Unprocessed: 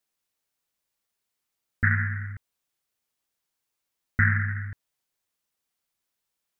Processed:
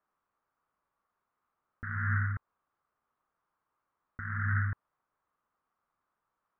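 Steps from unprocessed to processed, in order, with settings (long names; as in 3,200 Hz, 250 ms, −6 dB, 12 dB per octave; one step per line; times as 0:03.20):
low-pass with resonance 1,200 Hz, resonance Q 3.7
compressor whose output falls as the input rises −30 dBFS, ratio −1
level −2 dB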